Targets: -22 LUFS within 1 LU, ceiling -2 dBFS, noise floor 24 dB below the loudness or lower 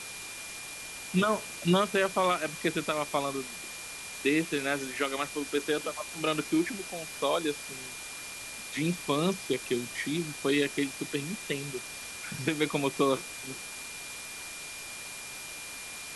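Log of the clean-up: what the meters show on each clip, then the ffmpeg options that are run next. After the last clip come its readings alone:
steady tone 2400 Hz; tone level -44 dBFS; noise floor -42 dBFS; noise floor target -56 dBFS; loudness -31.5 LUFS; peak -13.0 dBFS; loudness target -22.0 LUFS
-> -af "bandreject=f=2.4k:w=30"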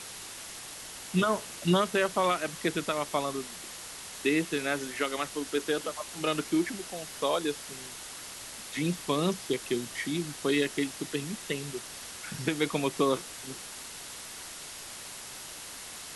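steady tone none; noise floor -43 dBFS; noise floor target -56 dBFS
-> -af "afftdn=nr=13:nf=-43"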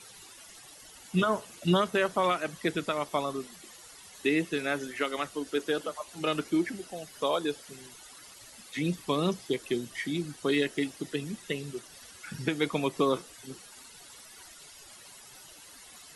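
noise floor -51 dBFS; noise floor target -55 dBFS
-> -af "afftdn=nr=6:nf=-51"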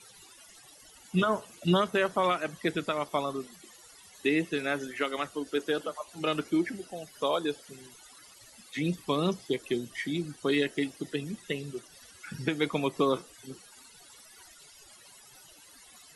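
noise floor -55 dBFS; loudness -31.0 LUFS; peak -13.0 dBFS; loudness target -22.0 LUFS
-> -af "volume=9dB"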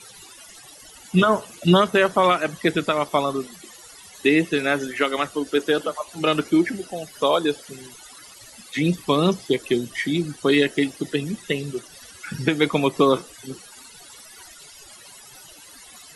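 loudness -22.0 LUFS; peak -4.0 dBFS; noise floor -46 dBFS

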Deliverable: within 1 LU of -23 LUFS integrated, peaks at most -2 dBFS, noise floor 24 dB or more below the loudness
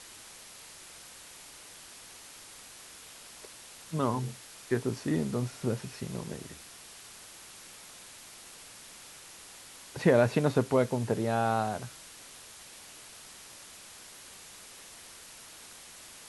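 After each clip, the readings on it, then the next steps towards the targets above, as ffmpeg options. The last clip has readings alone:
noise floor -50 dBFS; noise floor target -55 dBFS; loudness -30.5 LUFS; peak -10.0 dBFS; loudness target -23.0 LUFS
-> -af "afftdn=nr=6:nf=-50"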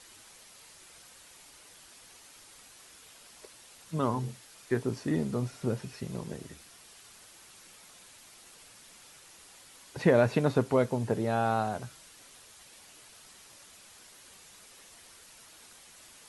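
noise floor -55 dBFS; loudness -30.0 LUFS; peak -10.0 dBFS; loudness target -23.0 LUFS
-> -af "volume=7dB"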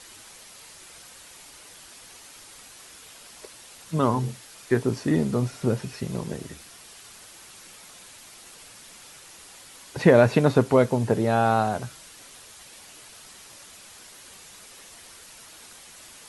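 loudness -23.0 LUFS; peak -3.0 dBFS; noise floor -48 dBFS

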